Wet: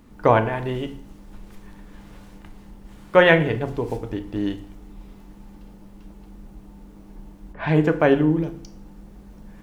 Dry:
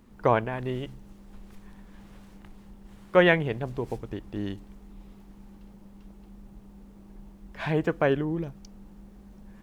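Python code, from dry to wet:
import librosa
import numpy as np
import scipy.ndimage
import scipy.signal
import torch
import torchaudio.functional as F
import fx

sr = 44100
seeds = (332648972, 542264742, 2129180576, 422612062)

y = fx.env_lowpass(x, sr, base_hz=900.0, full_db=-22.5, at=(7.52, 7.98), fade=0.02)
y = fx.rev_fdn(y, sr, rt60_s=0.58, lf_ratio=1.05, hf_ratio=0.85, size_ms=20.0, drr_db=6.5)
y = F.gain(torch.from_numpy(y), 5.0).numpy()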